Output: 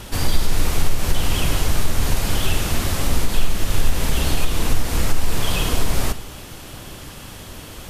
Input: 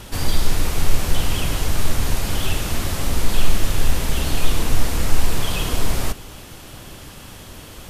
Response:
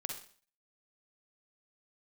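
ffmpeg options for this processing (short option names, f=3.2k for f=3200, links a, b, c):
-filter_complex "[0:a]acompressor=threshold=-11dB:ratio=6,asplit=2[a][b];[1:a]atrim=start_sample=2205[c];[b][c]afir=irnorm=-1:irlink=0,volume=-9.5dB[d];[a][d]amix=inputs=2:normalize=0"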